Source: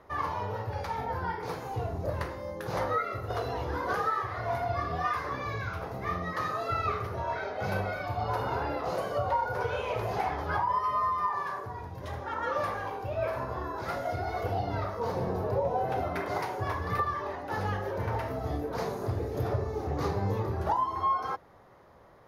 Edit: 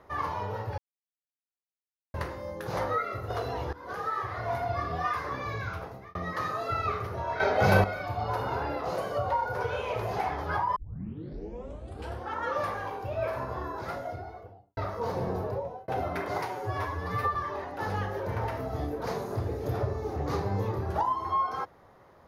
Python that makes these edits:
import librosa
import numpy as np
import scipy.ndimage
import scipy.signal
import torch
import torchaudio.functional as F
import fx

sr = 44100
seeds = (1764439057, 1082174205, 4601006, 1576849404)

y = fx.studio_fade_out(x, sr, start_s=13.63, length_s=1.14)
y = fx.edit(y, sr, fx.silence(start_s=0.78, length_s=1.36),
    fx.fade_in_from(start_s=3.73, length_s=0.52, floor_db=-20.0),
    fx.fade_out_span(start_s=5.74, length_s=0.41),
    fx.clip_gain(start_s=7.4, length_s=0.44, db=10.0),
    fx.tape_start(start_s=10.76, length_s=1.6),
    fx.fade_out_span(start_s=15.37, length_s=0.51),
    fx.stretch_span(start_s=16.48, length_s=0.58, factor=1.5), tone=tone)